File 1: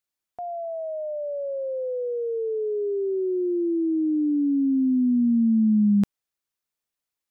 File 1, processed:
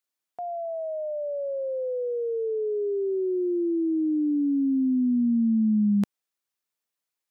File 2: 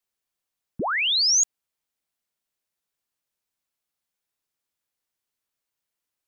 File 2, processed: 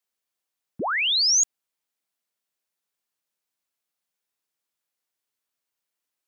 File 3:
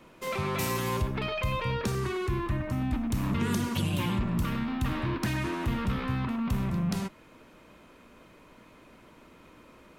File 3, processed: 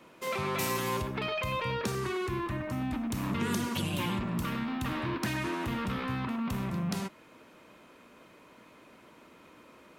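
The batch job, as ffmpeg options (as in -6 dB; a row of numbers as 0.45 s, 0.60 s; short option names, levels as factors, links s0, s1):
-af "highpass=f=200:p=1"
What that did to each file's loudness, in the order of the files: -2.0 LU, 0.0 LU, -2.5 LU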